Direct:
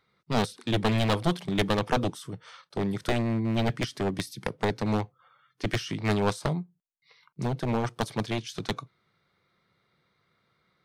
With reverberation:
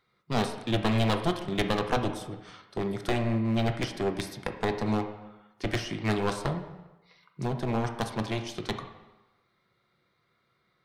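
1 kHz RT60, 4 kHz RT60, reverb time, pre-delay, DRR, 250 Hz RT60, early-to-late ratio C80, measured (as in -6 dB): 1.2 s, 0.85 s, 1.1 s, 3 ms, 5.0 dB, 0.95 s, 10.5 dB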